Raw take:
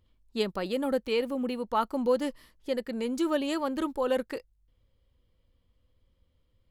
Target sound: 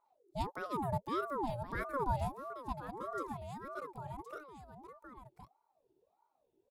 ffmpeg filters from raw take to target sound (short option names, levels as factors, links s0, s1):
-filter_complex "[0:a]equalizer=f=125:t=o:w=1:g=-10,equalizer=f=250:t=o:w=1:g=5,equalizer=f=1000:t=o:w=1:g=-5,equalizer=f=2000:t=o:w=1:g=-9,equalizer=f=4000:t=o:w=1:g=-6,asettb=1/sr,asplit=3[s0][s1][s2];[s0]atrim=end=2.724[s3];[s1]atrim=start=2.72:end=4.36,asetpts=PTS-STARTPTS,afade=t=in:d=0.004:c=qsin,afade=t=out:st=1.636:d=0.004:c=qsin,acompressor=threshold=0.0178:ratio=6[s4];[s2]atrim=start=4.356[s5];[s3][s4]acrossfade=d=0.004:c1=hsin:c2=qsin[s6];[s6][s5]acrossfade=d=0.004:c1=qsin:c2=hsin,asplit=2[s7][s8];[s8]aecho=0:1:1067:0.398[s9];[s7][s9]amix=inputs=2:normalize=0,aeval=exprs='val(0)*sin(2*PI*640*n/s+640*0.45/1.6*sin(2*PI*1.6*n/s))':c=same,volume=0.562"